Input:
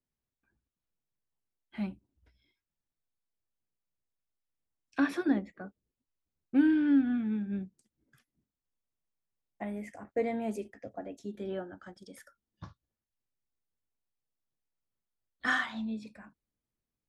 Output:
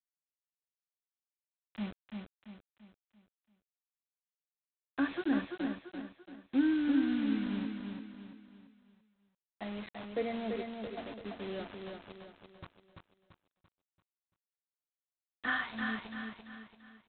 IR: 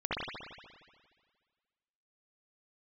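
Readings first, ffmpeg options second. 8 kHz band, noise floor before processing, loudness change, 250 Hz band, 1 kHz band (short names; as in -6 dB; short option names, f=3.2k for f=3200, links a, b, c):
n/a, under -85 dBFS, -4.0 dB, -3.0 dB, -2.0 dB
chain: -af "aresample=8000,acrusher=bits=6:mix=0:aa=0.000001,aresample=44100,aecho=1:1:339|678|1017|1356|1695:0.562|0.231|0.0945|0.0388|0.0159,volume=-4dB"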